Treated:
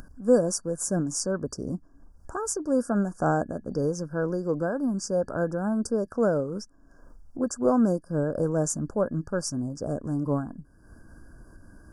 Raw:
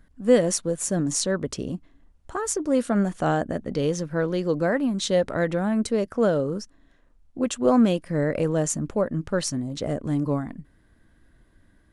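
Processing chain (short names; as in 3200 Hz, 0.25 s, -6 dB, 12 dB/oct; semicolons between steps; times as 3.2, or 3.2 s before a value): FFT band-reject 1700–4600 Hz; upward compressor, threshold -33 dBFS; noise-modulated level, depth 55%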